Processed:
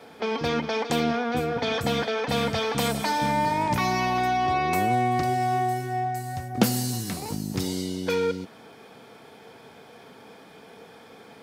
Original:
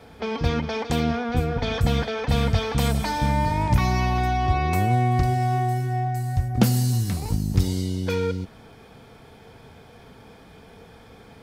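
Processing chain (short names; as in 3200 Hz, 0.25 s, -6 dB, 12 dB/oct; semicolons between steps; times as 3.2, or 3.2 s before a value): HPF 230 Hz 12 dB/oct; gain +1.5 dB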